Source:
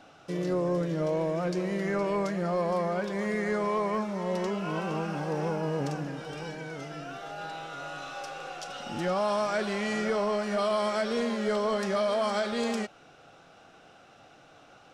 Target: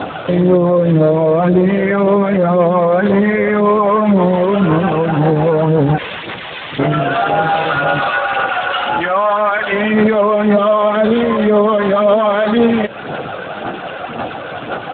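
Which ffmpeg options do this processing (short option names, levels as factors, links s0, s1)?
-filter_complex "[0:a]acompressor=threshold=0.0126:ratio=6,asplit=3[s0][s1][s2];[s0]afade=t=out:st=5.97:d=0.02[s3];[s1]aeval=exprs='(mod(224*val(0)+1,2)-1)/224':c=same,afade=t=in:st=5.97:d=0.02,afade=t=out:st=6.78:d=0.02[s4];[s2]afade=t=in:st=6.78:d=0.02[s5];[s3][s4][s5]amix=inputs=3:normalize=0,asplit=3[s6][s7][s8];[s6]afade=t=out:st=8.1:d=0.02[s9];[s7]bandpass=f=1600:t=q:w=0.84:csg=0,afade=t=in:st=8.1:d=0.02,afade=t=out:st=9.71:d=0.02[s10];[s8]afade=t=in:st=9.71:d=0.02[s11];[s9][s10][s11]amix=inputs=3:normalize=0,aphaser=in_gain=1:out_gain=1:delay=2:decay=0.47:speed=1.9:type=sinusoidal,asoftclip=type=hard:threshold=0.0299,asplit=2[s12][s13];[s13]adelay=1516,volume=0.0447,highshelf=f=4000:g=-34.1[s14];[s12][s14]amix=inputs=2:normalize=0,alimiter=level_in=56.2:limit=0.891:release=50:level=0:latency=1,volume=0.596" -ar 8000 -c:a libspeex -b:a 8k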